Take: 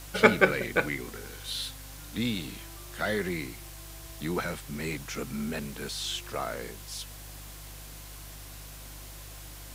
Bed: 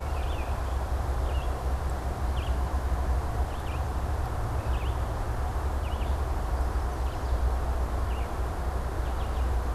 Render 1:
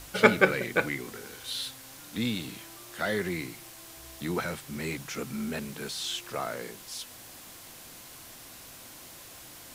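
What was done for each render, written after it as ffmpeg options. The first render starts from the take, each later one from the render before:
-af "bandreject=f=50:t=h:w=4,bandreject=f=100:t=h:w=4,bandreject=f=150:t=h:w=4"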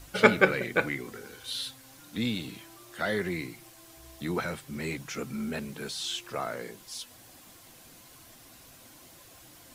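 -af "afftdn=nr=7:nf=-48"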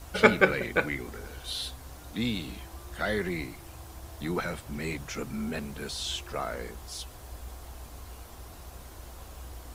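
-filter_complex "[1:a]volume=-16dB[a];[0:a][a]amix=inputs=2:normalize=0"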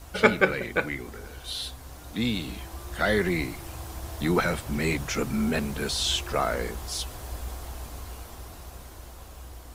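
-af "dynaudnorm=f=610:g=7:m=7.5dB"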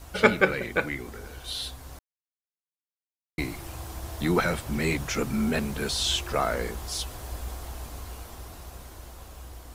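-filter_complex "[0:a]asplit=3[a][b][c];[a]atrim=end=1.99,asetpts=PTS-STARTPTS,afade=t=out:st=1.986:d=0.004:c=hsin[d];[b]atrim=start=1.99:end=3.38,asetpts=PTS-STARTPTS,volume=0[e];[c]atrim=start=3.38,asetpts=PTS-STARTPTS,afade=t=in:d=0.004:c=hsin[f];[d][e][f]concat=n=3:v=0:a=1"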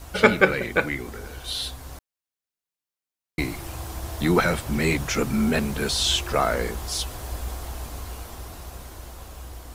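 -af "volume=4dB,alimiter=limit=-2dB:level=0:latency=1"

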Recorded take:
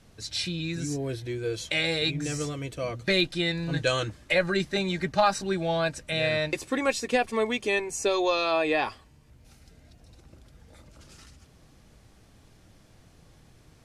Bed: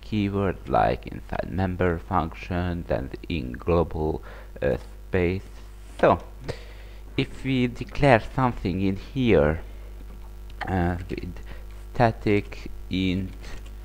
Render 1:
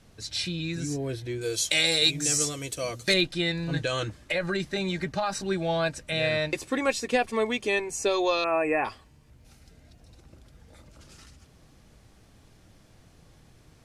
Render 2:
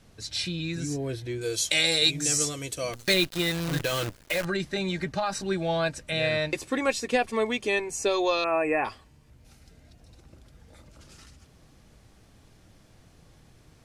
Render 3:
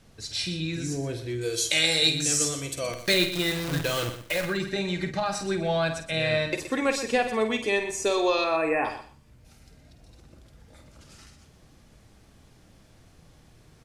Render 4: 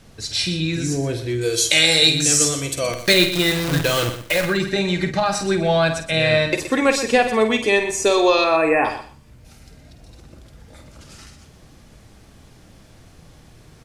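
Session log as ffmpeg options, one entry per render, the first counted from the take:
-filter_complex "[0:a]asettb=1/sr,asplit=3[a][b][c];[a]atrim=end=1.414[d];[b]atrim=start=1.41:end=3.14,asetpts=PTS-STARTPTS,afade=t=in:d=0.004:c=qsin,afade=t=out:st=1.726:d=0.004:c=qsin,bass=f=250:g=-4,treble=f=4k:g=15[e];[c]atrim=start=3.136[f];[d][e]acrossfade=d=0.004:c1=hsin:c2=qsin[g];[g][f]acrossfade=d=0.004:c1=qsin:c2=hsin,asettb=1/sr,asplit=3[h][i][j];[h]atrim=end=3.844[k];[i]atrim=start=3.84:end=5.46,asetpts=PTS-STARTPTS,afade=t=in:d=0.004:c=qsin,afade=t=out:st=1.616:d=0.004:c=qsin,acompressor=threshold=-23dB:ratio=6:attack=3.2:release=140:knee=1:detection=peak[l];[j]atrim=start=5.456[m];[k][l]acrossfade=d=0.004:c1=hsin:c2=qsin[n];[n][m]acrossfade=d=0.004:c1=qsin:c2=hsin,asettb=1/sr,asplit=3[o][p][q];[o]atrim=end=8.444[r];[p]atrim=start=8.44:end=8.85,asetpts=PTS-STARTPTS,afade=t=in:d=0.004:c=qsin,afade=t=out:st=0.406:d=0.004:c=qsin,asuperstop=centerf=4400:order=12:qfactor=0.94[s];[q]atrim=start=8.846[t];[r][s]acrossfade=d=0.004:c1=hsin:c2=qsin[u];[u][t]acrossfade=d=0.004:c1=qsin:c2=hsin"
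-filter_complex "[0:a]asettb=1/sr,asplit=3[a][b][c];[a]atrim=end=2.934[d];[b]atrim=start=2.93:end=4.45,asetpts=PTS-STARTPTS,afade=t=in:d=0.004:c=qsin,afade=t=out:st=1.516:d=0.004:c=qsin,acrusher=bits=6:dc=4:mix=0:aa=0.000001[e];[c]atrim=start=4.446[f];[d][e]acrossfade=d=0.004:c1=hsin:c2=qsin[g];[g][f]acrossfade=d=0.004:c1=qsin:c2=hsin"
-filter_complex "[0:a]asplit=2[a][b];[b]adelay=50,volume=-9dB[c];[a][c]amix=inputs=2:normalize=0,asplit=2[d][e];[e]aecho=0:1:122|244:0.266|0.0452[f];[d][f]amix=inputs=2:normalize=0"
-af "volume=8dB,alimiter=limit=-2dB:level=0:latency=1"

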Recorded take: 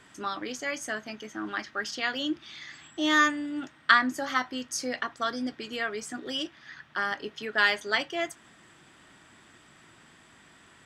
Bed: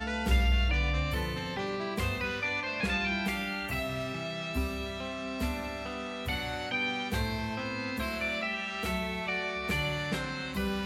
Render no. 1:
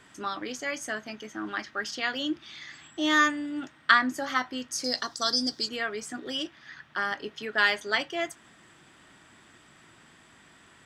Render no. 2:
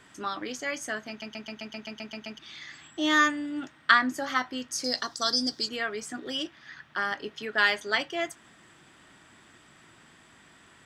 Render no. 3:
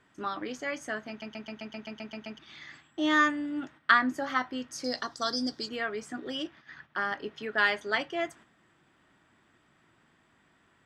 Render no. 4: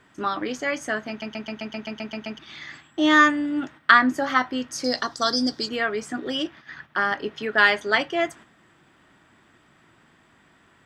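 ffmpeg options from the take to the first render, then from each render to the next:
-filter_complex "[0:a]asettb=1/sr,asplit=3[a][b][c];[a]atrim=end=4.844[d];[b]atrim=start=4.84:end=5.69,asetpts=PTS-STARTPTS,afade=t=in:d=0.004:c=qsin,afade=t=out:st=0.846:d=0.004:c=qsin,highshelf=f=3.5k:t=q:w=3:g=12[e];[c]atrim=start=5.686[f];[d][e]acrossfade=d=0.004:c1=hsin:c2=qsin[g];[g][f]acrossfade=d=0.004:c1=qsin:c2=hsin"
-filter_complex "[0:a]asplit=11[a][b][c][d][e][f][g][h][i][j][k];[a]atrim=end=1.222[l];[b]atrim=start=1.088:end=1.222[m];[c]atrim=start=1.088:end=1.222[n];[d]atrim=start=1.088:end=1.222[o];[e]atrim=start=1.088:end=1.222[p];[f]atrim=start=1.088:end=1.222[q];[g]atrim=start=1.088:end=1.222[r];[h]atrim=start=1.088:end=1.222[s];[i]atrim=start=1.088:end=1.222[t];[j]atrim=start=1.088:end=1.222[u];[k]atrim=start=2.388[v];[l][m]acrossfade=d=0.004:c1=hsin:c2=hsin[w];[w][n]acrossfade=d=0.004:c1=hsin:c2=hsin[x];[x][o]acrossfade=d=0.004:c1=hsin:c2=hsin[y];[y][p]acrossfade=d=0.004:c1=hsin:c2=hsin[z];[z][q]acrossfade=d=0.004:c1=hsin:c2=hsin[aa];[aa][r]acrossfade=d=0.004:c1=hsin:c2=hsin[ab];[ab][s]acrossfade=d=0.004:c1=hsin:c2=hsin[ac];[ac][t]acrossfade=d=0.004:c1=hsin:c2=hsin[ad];[ad][u]acrossfade=d=0.004:c1=hsin:c2=hsin[ae];[ae][v]acrossfade=d=0.004:c1=hsin:c2=hsin"
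-af "highshelf=f=3.5k:g=-11,agate=range=-8dB:threshold=-51dB:ratio=16:detection=peak"
-af "volume=8dB,alimiter=limit=-1dB:level=0:latency=1"

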